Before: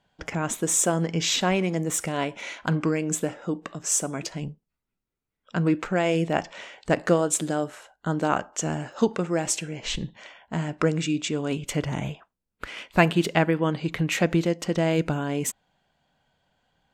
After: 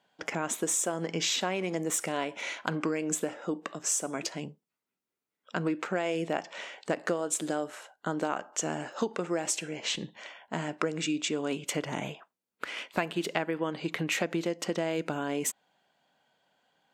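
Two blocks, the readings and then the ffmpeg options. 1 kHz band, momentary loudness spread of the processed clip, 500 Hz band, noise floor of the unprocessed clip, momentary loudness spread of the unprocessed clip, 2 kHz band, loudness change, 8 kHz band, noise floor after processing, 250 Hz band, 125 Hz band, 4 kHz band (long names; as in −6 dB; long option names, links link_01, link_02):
−6.0 dB, 9 LU, −6.0 dB, −84 dBFS, 11 LU, −4.5 dB, −6.5 dB, −4.5 dB, below −85 dBFS, −7.5 dB, −12.5 dB, −3.5 dB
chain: -af "highpass=260,acompressor=threshold=-26dB:ratio=6"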